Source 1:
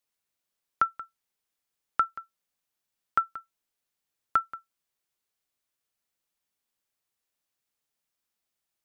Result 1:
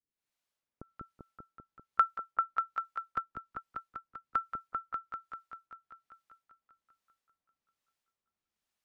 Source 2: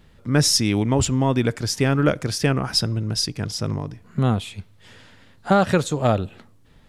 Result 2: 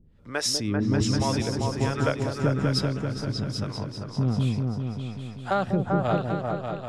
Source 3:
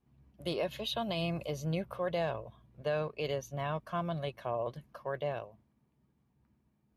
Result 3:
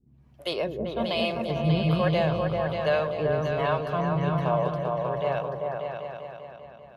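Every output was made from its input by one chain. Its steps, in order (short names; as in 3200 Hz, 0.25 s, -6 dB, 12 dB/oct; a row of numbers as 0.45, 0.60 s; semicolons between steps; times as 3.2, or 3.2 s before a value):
high shelf 8300 Hz -9 dB; harmonic tremolo 1.2 Hz, depth 100%, crossover 430 Hz; on a send: repeats that get brighter 0.196 s, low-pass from 400 Hz, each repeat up 2 oct, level 0 dB; on the sum: normalise peaks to -12 dBFS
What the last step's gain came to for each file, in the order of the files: +0.5, -3.0, +11.0 dB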